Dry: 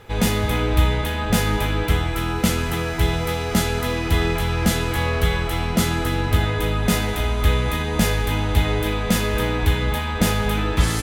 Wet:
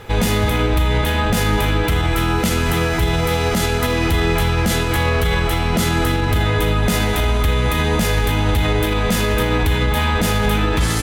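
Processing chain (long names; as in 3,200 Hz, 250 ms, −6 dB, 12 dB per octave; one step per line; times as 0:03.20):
brickwall limiter −16.5 dBFS, peak gain reduction 11.5 dB
level +8 dB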